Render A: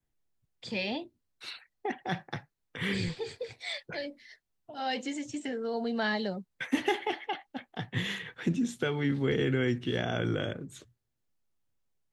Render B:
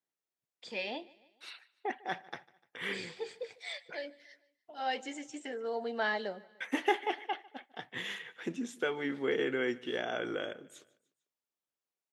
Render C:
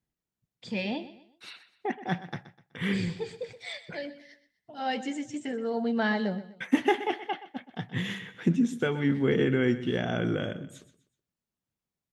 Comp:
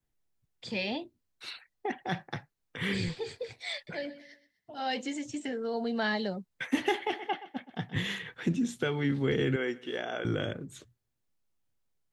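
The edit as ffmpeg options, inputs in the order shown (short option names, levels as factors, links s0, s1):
-filter_complex "[2:a]asplit=2[s0][s1];[0:a]asplit=4[s2][s3][s4][s5];[s2]atrim=end=3.872[s6];[s0]atrim=start=3.868:end=4.712[s7];[s3]atrim=start=4.708:end=7.142[s8];[s1]atrim=start=7.138:end=7.962[s9];[s4]atrim=start=7.958:end=9.562[s10];[1:a]atrim=start=9.558:end=10.252[s11];[s5]atrim=start=10.248[s12];[s6][s7]acrossfade=d=0.004:c1=hsin:c2=hsin[s13];[s13][s8]acrossfade=d=0.004:c1=hsin:c2=hsin[s14];[s14][s9]acrossfade=d=0.004:c1=hsin:c2=hsin[s15];[s15][s10]acrossfade=d=0.004:c1=hsin:c2=hsin[s16];[s16][s11]acrossfade=d=0.004:c1=hsin:c2=hsin[s17];[s17][s12]acrossfade=d=0.004:c1=hsin:c2=hsin"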